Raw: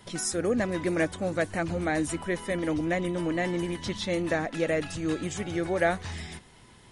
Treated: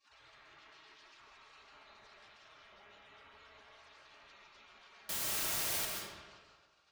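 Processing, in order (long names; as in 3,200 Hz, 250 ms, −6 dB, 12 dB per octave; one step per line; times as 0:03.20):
0:00.46–0:01.04: lower of the sound and its delayed copy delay 1.4 ms
gate on every frequency bin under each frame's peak −25 dB weak
low-pass filter 4,900 Hz 24 dB per octave
parametric band 1,200 Hz +4 dB 0.92 octaves
brickwall limiter −52.5 dBFS, peak gain reduction 24 dB
0:05.09–0:05.85: bit-depth reduction 6 bits, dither triangular
notch comb filter 250 Hz
convolution reverb RT60 1.5 s, pre-delay 100 ms, DRR 0 dB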